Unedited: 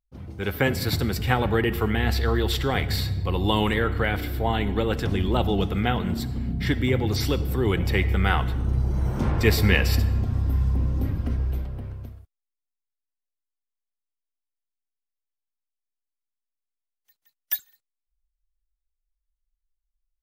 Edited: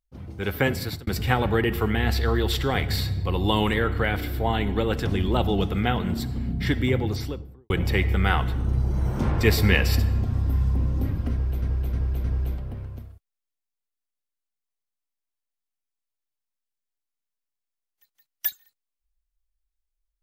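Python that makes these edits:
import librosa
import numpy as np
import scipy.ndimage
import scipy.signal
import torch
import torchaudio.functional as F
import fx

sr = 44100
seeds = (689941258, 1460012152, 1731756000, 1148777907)

y = fx.studio_fade_out(x, sr, start_s=6.84, length_s=0.86)
y = fx.edit(y, sr, fx.fade_out_span(start_s=0.56, length_s=0.51, curve='qsin'),
    fx.repeat(start_s=11.31, length_s=0.31, count=4), tone=tone)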